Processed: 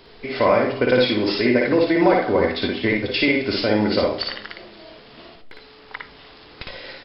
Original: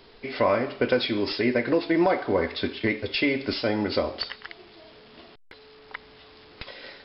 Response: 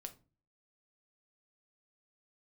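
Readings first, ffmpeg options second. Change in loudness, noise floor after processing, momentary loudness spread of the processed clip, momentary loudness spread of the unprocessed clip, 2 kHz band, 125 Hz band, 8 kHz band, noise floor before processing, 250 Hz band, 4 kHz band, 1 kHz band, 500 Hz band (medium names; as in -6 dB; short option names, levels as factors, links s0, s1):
+6.0 dB, -46 dBFS, 20 LU, 19 LU, +6.0 dB, +6.5 dB, no reading, -51 dBFS, +6.0 dB, +5.5 dB, +6.0 dB, +6.0 dB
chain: -filter_complex "[0:a]aecho=1:1:299|598|897:0.0668|0.0334|0.0167,asplit=2[s0][s1];[1:a]atrim=start_sample=2205,adelay=57[s2];[s1][s2]afir=irnorm=-1:irlink=0,volume=1.41[s3];[s0][s3]amix=inputs=2:normalize=0,volume=1.5"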